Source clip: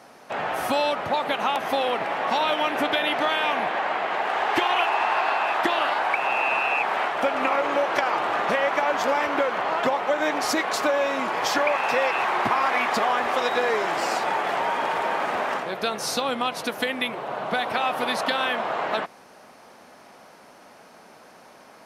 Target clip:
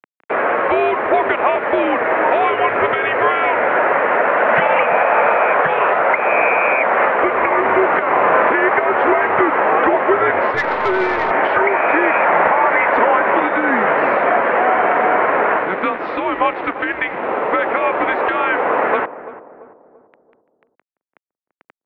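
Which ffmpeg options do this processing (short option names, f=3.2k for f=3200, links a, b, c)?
-filter_complex "[0:a]tiltshelf=f=640:g=-5.5,asplit=2[a][b];[b]acompressor=threshold=-38dB:ratio=6,volume=0.5dB[c];[a][c]amix=inputs=2:normalize=0,alimiter=limit=-10dB:level=0:latency=1:release=236,acrusher=bits=4:mix=0:aa=0.000001,highpass=f=420:t=q:w=0.5412,highpass=f=420:t=q:w=1.307,lowpass=f=2.4k:t=q:w=0.5176,lowpass=f=2.4k:t=q:w=0.7071,lowpass=f=2.4k:t=q:w=1.932,afreqshift=-190,asettb=1/sr,asplit=3[d][e][f];[d]atrim=end=8.044[g];[e]atrim=start=8.04:end=8.49,asetpts=PTS-STARTPTS,afade=t=in:d=0.004:c=qsin,afade=t=out:st=0.446:d=0.004:c=qsin,asplit=2[h][i];[i]adelay=36,volume=-5dB[j];[h][j]amix=inputs=2:normalize=0,atrim=end_sample=19845[k];[f]atrim=start=8.486[l];[g][k]acrossfade=d=0.004:c1=hsin:c2=qsin[m];[m][l]acrossfade=d=0.004:c1=qsin:c2=hsin,asplit=2[n][o];[o]adelay=339,lowpass=f=840:p=1,volume=-13.5dB,asplit=2[p][q];[q]adelay=339,lowpass=f=840:p=1,volume=0.5,asplit=2[r][s];[s]adelay=339,lowpass=f=840:p=1,volume=0.5,asplit=2[t][u];[u]adelay=339,lowpass=f=840:p=1,volume=0.5,asplit=2[v][w];[w]adelay=339,lowpass=f=840:p=1,volume=0.5[x];[p][r][t][v][x]amix=inputs=5:normalize=0[y];[n][y]amix=inputs=2:normalize=0,asettb=1/sr,asplit=3[z][aa][ab];[z]atrim=end=10.544[ac];[aa]atrim=start=10.54:end=11.31,asetpts=PTS-STARTPTS,afade=t=in:d=0.004:c=qsin,afade=t=out:st=0.766:d=0.004:c=qsin,aeval=exprs='(tanh(7.08*val(0)+0.3)-tanh(0.3))/7.08':c=same[ad];[ab]atrim=start=11.306[ae];[ac][ad]acrossfade=d=0.004:c1=hsin:c2=qsin[af];[af][ae]acrossfade=d=0.004:c1=qsin:c2=hsin,volume=7.5dB"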